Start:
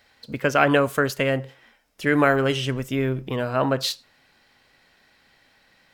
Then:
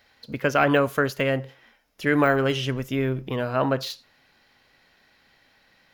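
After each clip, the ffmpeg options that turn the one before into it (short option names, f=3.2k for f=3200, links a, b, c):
-af "deesser=0.6,equalizer=f=8.2k:w=5.6:g=-11.5,volume=-1dB"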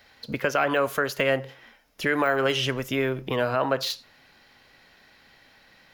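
-filter_complex "[0:a]acrossover=split=390[a][b];[a]acompressor=threshold=-35dB:ratio=6[c];[c][b]amix=inputs=2:normalize=0,alimiter=limit=-16.5dB:level=0:latency=1:release=183,volume=4.5dB"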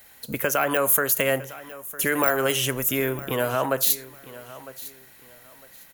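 -af "aexciter=amount=8:drive=7.6:freq=7.1k,aecho=1:1:955|1910:0.133|0.036"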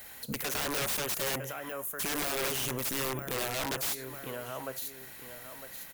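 -af "aeval=exprs='(mod(9.44*val(0)+1,2)-1)/9.44':c=same,alimiter=level_in=6dB:limit=-24dB:level=0:latency=1:release=172,volume=-6dB,volume=3.5dB"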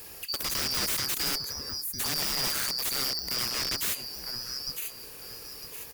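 -filter_complex "[0:a]afftfilt=real='real(if(lt(b,272),68*(eq(floor(b/68),0)*1+eq(floor(b/68),1)*2+eq(floor(b/68),2)*3+eq(floor(b/68),3)*0)+mod(b,68),b),0)':imag='imag(if(lt(b,272),68*(eq(floor(b/68),0)*1+eq(floor(b/68),1)*2+eq(floor(b/68),2)*3+eq(floor(b/68),3)*0)+mod(b,68),b),0)':win_size=2048:overlap=0.75,acrossover=split=820|5900[a][b][c];[a]acrusher=samples=32:mix=1:aa=0.000001:lfo=1:lforange=19.2:lforate=0.34[d];[d][b][c]amix=inputs=3:normalize=0,volume=3dB"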